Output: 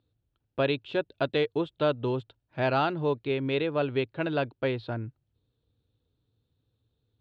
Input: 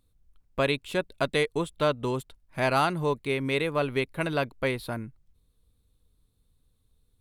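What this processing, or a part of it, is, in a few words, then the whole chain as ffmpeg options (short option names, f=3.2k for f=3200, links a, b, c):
guitar cabinet: -af "highpass=110,equalizer=f=110:t=q:w=4:g=8,equalizer=f=190:t=q:w=4:g=-8,equalizer=f=330:t=q:w=4:g=3,equalizer=f=1.1k:t=q:w=4:g=-7,equalizer=f=2.1k:t=q:w=4:g=-9,lowpass=f=3.8k:w=0.5412,lowpass=f=3.8k:w=1.3066"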